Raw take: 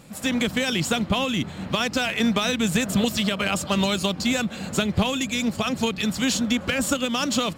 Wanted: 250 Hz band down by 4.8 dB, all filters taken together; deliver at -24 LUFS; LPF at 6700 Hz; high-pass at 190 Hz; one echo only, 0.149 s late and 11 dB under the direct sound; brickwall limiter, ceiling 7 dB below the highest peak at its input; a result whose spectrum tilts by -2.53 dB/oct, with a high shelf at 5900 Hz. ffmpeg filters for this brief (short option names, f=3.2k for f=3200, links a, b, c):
-af "highpass=190,lowpass=6.7k,equalizer=f=250:t=o:g=-3.5,highshelf=f=5.9k:g=8,alimiter=limit=-16.5dB:level=0:latency=1,aecho=1:1:149:0.282,volume=2.5dB"